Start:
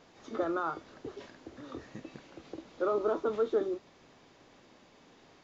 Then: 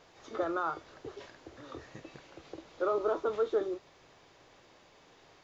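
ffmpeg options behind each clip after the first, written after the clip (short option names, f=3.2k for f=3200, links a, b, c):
-af "equalizer=f=230:w=1.8:g=-10.5,volume=1dB"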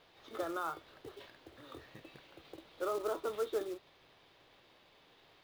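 -af "lowpass=f=3.7k:t=q:w=2,acrusher=bits=4:mode=log:mix=0:aa=0.000001,volume=-6dB"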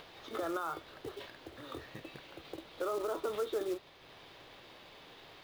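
-af "alimiter=level_in=9dB:limit=-24dB:level=0:latency=1:release=76,volume=-9dB,acompressor=mode=upward:threshold=-54dB:ratio=2.5,volume=6dB"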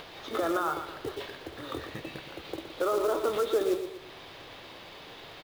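-af "aecho=1:1:118|236|354|472:0.355|0.138|0.054|0.021,volume=7.5dB"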